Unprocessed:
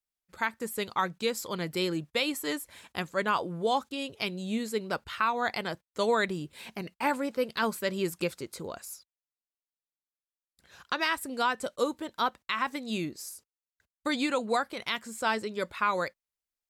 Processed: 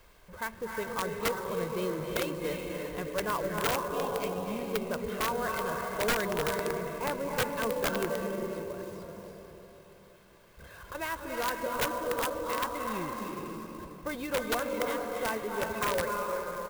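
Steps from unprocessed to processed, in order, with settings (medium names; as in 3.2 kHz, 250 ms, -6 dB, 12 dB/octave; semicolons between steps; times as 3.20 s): jump at every zero crossing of -37.5 dBFS; treble shelf 2.1 kHz -8.5 dB; 8.11–10.95 s: compression, threshold -38 dBFS, peak gain reduction 12.5 dB; treble shelf 5.1 kHz -11.5 dB; comb 1.9 ms, depth 50%; reverberation RT60 3.6 s, pre-delay 238 ms, DRR 0 dB; integer overflow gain 17.5 dB; sampling jitter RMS 0.033 ms; trim -4.5 dB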